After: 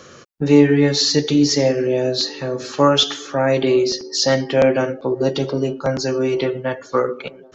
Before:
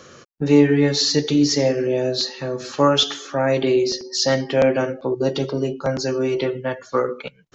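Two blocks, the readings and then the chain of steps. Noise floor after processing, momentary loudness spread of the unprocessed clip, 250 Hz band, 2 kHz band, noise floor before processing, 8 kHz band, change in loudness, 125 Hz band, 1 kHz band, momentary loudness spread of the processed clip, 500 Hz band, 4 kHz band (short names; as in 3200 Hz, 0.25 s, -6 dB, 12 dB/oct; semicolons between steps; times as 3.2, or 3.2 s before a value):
-44 dBFS, 8 LU, +2.0 dB, +2.0 dB, -51 dBFS, n/a, +2.0 dB, +2.0 dB, +2.0 dB, 8 LU, +2.0 dB, +2.0 dB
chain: band-limited delay 0.888 s, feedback 65%, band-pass 530 Hz, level -24 dB; gain +2 dB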